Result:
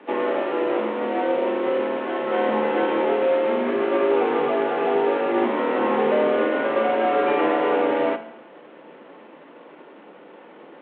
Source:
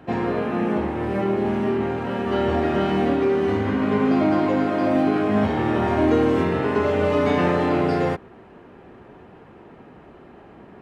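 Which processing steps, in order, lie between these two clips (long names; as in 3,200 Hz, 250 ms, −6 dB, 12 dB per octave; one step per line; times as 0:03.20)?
variable-slope delta modulation 16 kbit/s
frequency shifter +140 Hz
feedback delay network reverb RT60 0.86 s, low-frequency decay 1.1×, high-frequency decay 0.95×, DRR 9 dB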